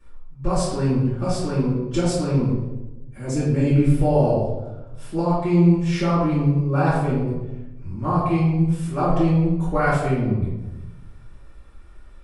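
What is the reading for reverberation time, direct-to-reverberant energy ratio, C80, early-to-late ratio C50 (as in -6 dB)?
1.1 s, -13.5 dB, 3.0 dB, 0.0 dB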